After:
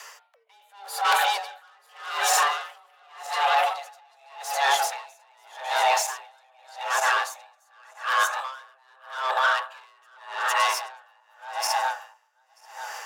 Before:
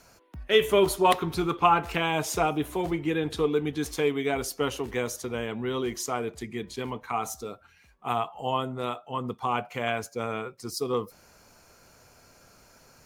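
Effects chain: backward echo that repeats 467 ms, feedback 51%, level -2 dB; de-hum 72.89 Hz, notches 4; in parallel at 0 dB: compressor with a negative ratio -28 dBFS; on the sum: overdrive pedal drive 14 dB, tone 6 kHz, clips at -5.5 dBFS; saturation -15.5 dBFS, distortion -13 dB; repeats whose band climbs or falls 124 ms, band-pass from 240 Hz, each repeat 0.7 oct, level -4 dB; frequency shift +400 Hz; logarithmic tremolo 0.85 Hz, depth 38 dB

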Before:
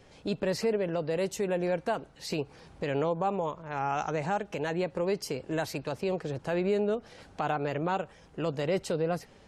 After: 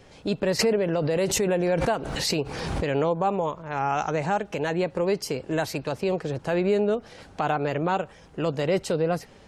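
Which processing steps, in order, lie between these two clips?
0.59–2.88 s: swell ahead of each attack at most 31 dB/s; trim +5 dB

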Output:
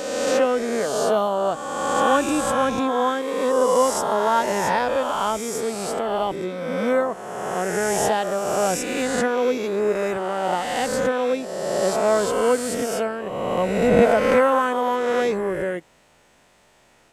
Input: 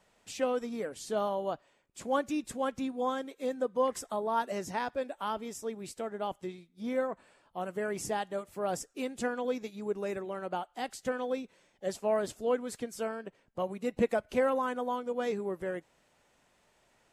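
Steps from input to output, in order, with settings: reverse spectral sustain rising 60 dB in 1.89 s; trim +8.5 dB

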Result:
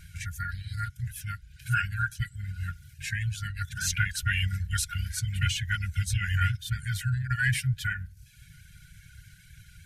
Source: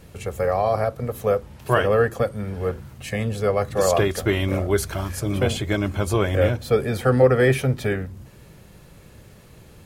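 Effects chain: reverb removal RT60 0.78 s; brick-wall FIR band-stop 180–1400 Hz; formant shift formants -2 st

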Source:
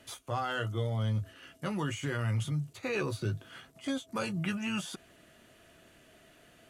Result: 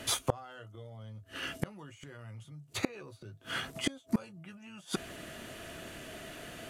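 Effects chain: dynamic bell 650 Hz, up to +4 dB, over -47 dBFS, Q 1.3; inverted gate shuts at -30 dBFS, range -30 dB; trim +13.5 dB

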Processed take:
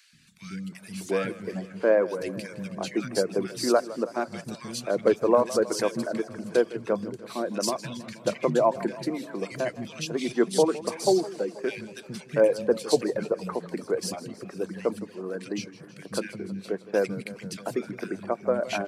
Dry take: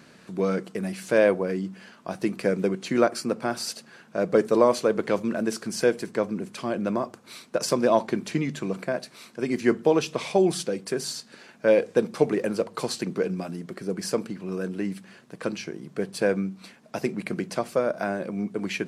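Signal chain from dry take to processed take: three bands offset in time highs, lows, mids 130/720 ms, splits 200/1900 Hz; reverb removal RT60 0.82 s; modulated delay 160 ms, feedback 69%, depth 119 cents, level -17 dB

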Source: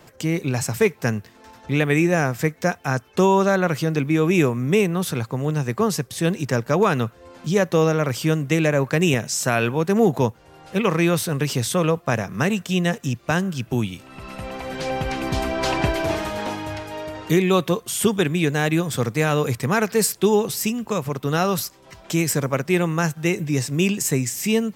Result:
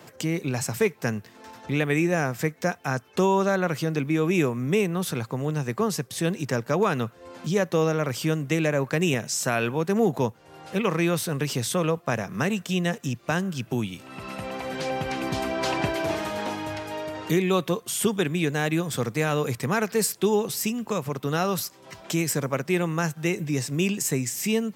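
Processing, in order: high-pass 110 Hz; in parallel at +2.5 dB: compression, threshold -33 dBFS, peak gain reduction 19 dB; on the sum: trim -6 dB

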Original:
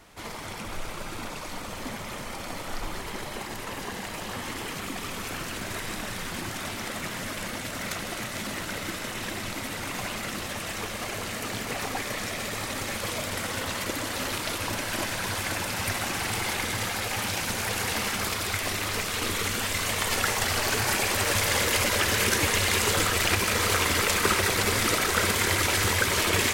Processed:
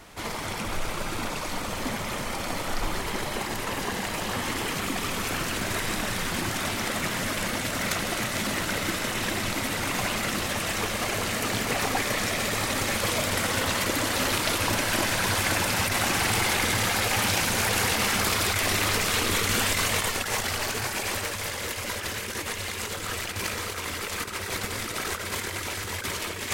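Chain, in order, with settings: compressor with a negative ratio -29 dBFS, ratio -0.5; trim +3 dB

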